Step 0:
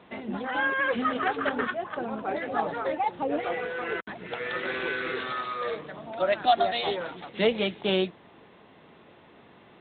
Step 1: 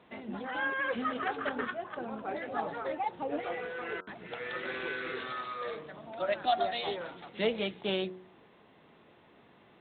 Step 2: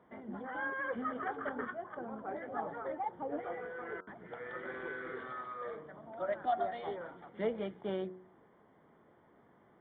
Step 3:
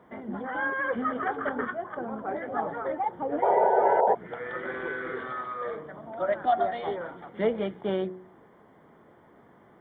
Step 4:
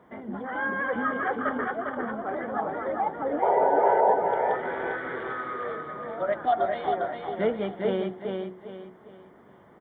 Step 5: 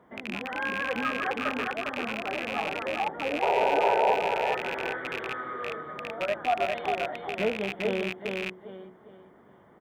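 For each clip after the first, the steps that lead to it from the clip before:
hum removal 92.29 Hz, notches 17; level −6 dB
Savitzky-Golay smoothing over 41 samples; level −4 dB
sound drawn into the spectrogram noise, 0:03.42–0:04.15, 380–980 Hz −30 dBFS; level +8.5 dB
repeating echo 403 ms, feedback 35%, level −4 dB
loose part that buzzes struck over −42 dBFS, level −18 dBFS; level −2.5 dB

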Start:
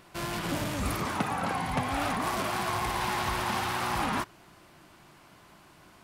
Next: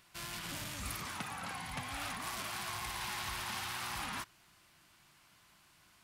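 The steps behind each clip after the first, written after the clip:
guitar amp tone stack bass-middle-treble 5-5-5
level +2.5 dB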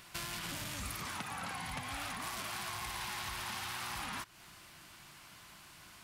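downward compressor 6 to 1, threshold −48 dBFS, peak gain reduction 12 dB
level +9.5 dB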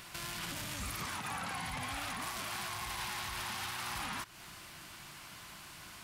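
brickwall limiter −35 dBFS, peak gain reduction 10 dB
level +5 dB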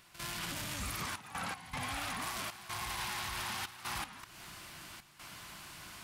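gate pattern ".xxxxx.x.xxxx" 78 BPM −12 dB
level +1 dB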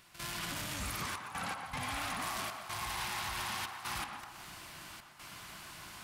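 feedback echo with a band-pass in the loop 124 ms, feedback 62%, band-pass 890 Hz, level −4.5 dB

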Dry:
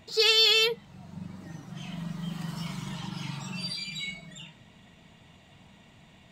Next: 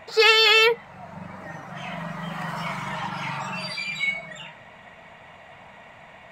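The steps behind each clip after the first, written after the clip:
flat-topped bell 1,100 Hz +15 dB 2.6 octaves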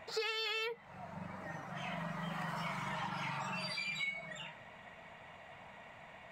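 downward compressor 8 to 1, threshold −28 dBFS, peak gain reduction 16 dB
level −7.5 dB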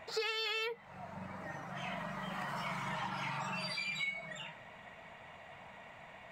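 hum removal 55.24 Hz, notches 5
level +1 dB

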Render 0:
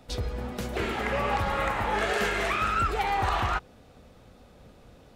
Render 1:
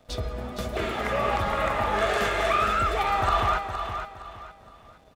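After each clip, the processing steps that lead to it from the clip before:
dead-zone distortion −55.5 dBFS
hollow resonant body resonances 640/1,200/3,500 Hz, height 13 dB, ringing for 85 ms
on a send: repeating echo 465 ms, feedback 31%, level −8 dB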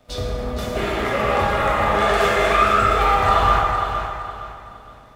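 dense smooth reverb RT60 1.7 s, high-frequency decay 0.6×, DRR −3.5 dB
level +1.5 dB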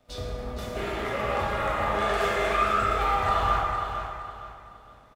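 double-tracking delay 35 ms −12 dB
level −8.5 dB

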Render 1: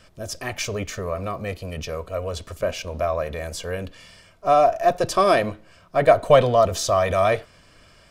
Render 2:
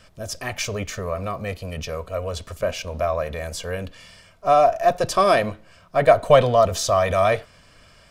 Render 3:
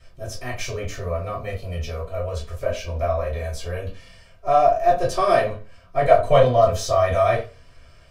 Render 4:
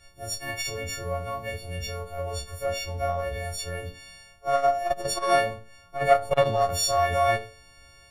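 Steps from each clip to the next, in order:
parametric band 340 Hz −5 dB 0.52 octaves; level +1 dB
convolution reverb RT60 0.30 s, pre-delay 3 ms, DRR −8.5 dB; level −15 dB
every partial snapped to a pitch grid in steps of 4 semitones; saturating transformer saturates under 420 Hz; level −5 dB

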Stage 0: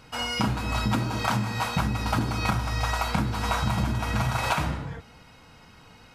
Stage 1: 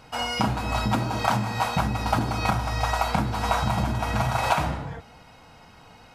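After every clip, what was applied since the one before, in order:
parametric band 730 Hz +7 dB 0.78 octaves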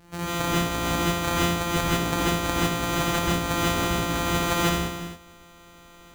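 samples sorted by size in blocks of 256 samples
reverb whose tail is shaped and stops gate 180 ms rising, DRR −6.5 dB
level −5 dB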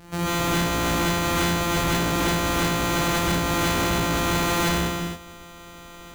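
soft clipping −26 dBFS, distortion −9 dB
level +7 dB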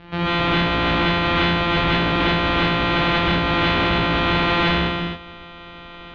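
Butterworth low-pass 3,600 Hz 36 dB per octave
high-shelf EQ 2,400 Hz +8 dB
level +3 dB

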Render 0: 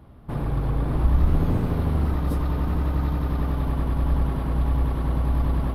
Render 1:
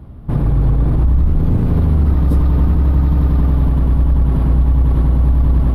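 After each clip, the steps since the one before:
low-shelf EQ 340 Hz +11.5 dB
brickwall limiter −9.5 dBFS, peak gain reduction 11 dB
level +3 dB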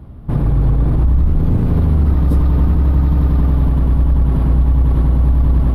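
no processing that can be heard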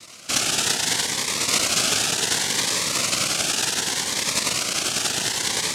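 cochlear-implant simulation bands 1
phaser whose notches keep moving one way rising 0.67 Hz
level −3.5 dB

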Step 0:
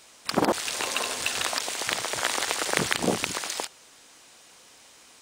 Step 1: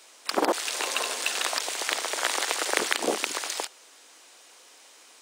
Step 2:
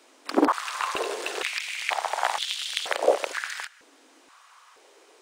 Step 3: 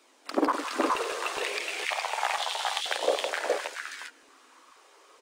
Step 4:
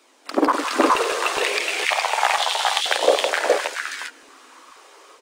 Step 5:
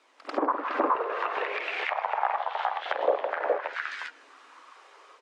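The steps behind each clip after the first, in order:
high-pass filter 300 Hz 24 dB per octave
high-shelf EQ 2,900 Hz −10 dB; high-pass on a step sequencer 2.1 Hz 270–3,300 Hz
flanger 0.64 Hz, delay 0.8 ms, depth 1.8 ms, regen +67%; on a send: multi-tap delay 50/165/417/429 ms −12/−11/−3/−8 dB
automatic gain control gain up to 5 dB; level +4.5 dB
resonant band-pass 1,300 Hz, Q 0.54; echo ahead of the sound 93 ms −14 dB; treble cut that deepens with the level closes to 1,100 Hz, closed at −18.5 dBFS; level −4 dB

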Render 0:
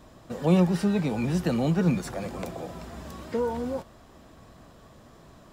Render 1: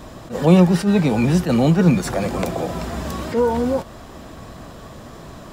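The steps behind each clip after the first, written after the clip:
in parallel at +1.5 dB: downward compressor, threshold −34 dBFS, peak gain reduction 17 dB
on the sum: level that may rise only so fast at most 200 dB per second
level +7 dB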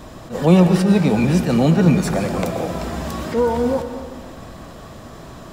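comb and all-pass reverb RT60 1.5 s, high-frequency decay 0.8×, pre-delay 75 ms, DRR 7.5 dB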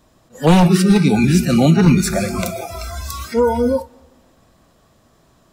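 wavefolder on the positive side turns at −8.5 dBFS
high-shelf EQ 4,300 Hz +7 dB
noise reduction from a noise print of the clip's start 21 dB
level +3 dB

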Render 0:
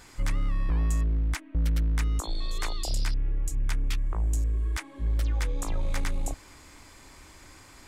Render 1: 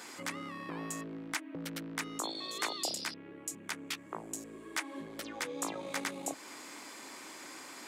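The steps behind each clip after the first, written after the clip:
downward compressor 1.5 to 1, threshold −36 dBFS, peak gain reduction 5 dB
high-pass filter 220 Hz 24 dB per octave
level +4.5 dB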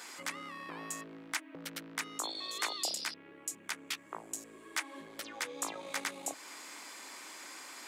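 low-shelf EQ 450 Hz −11 dB
level +1 dB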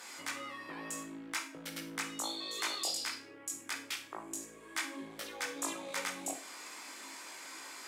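multi-voice chorus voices 6, 0.37 Hz, delay 20 ms, depth 2.1 ms
four-comb reverb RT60 0.39 s, combs from 33 ms, DRR 7.5 dB
harmonic generator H 5 −30 dB, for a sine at −23.5 dBFS
level +1.5 dB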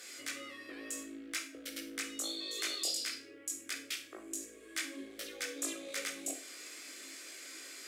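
phaser with its sweep stopped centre 380 Hz, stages 4
level +1 dB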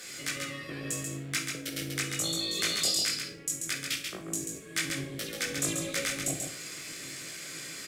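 sub-octave generator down 1 octave, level +1 dB
in parallel at −8 dB: dead-zone distortion −55.5 dBFS
on the sum: single-tap delay 137 ms −5 dB
level +4 dB

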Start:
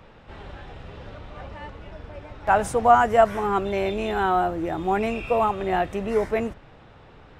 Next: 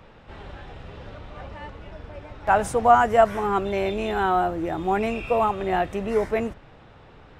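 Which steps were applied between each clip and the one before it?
no processing that can be heard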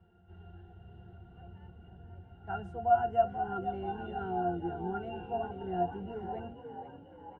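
resonances in every octave F, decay 0.14 s
echo with shifted repeats 485 ms, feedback 58%, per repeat +42 Hz, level −10 dB
level −3 dB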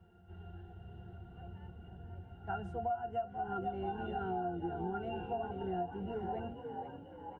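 downward compressor 8 to 1, threshold −35 dBFS, peak gain reduction 15.5 dB
level +1.5 dB

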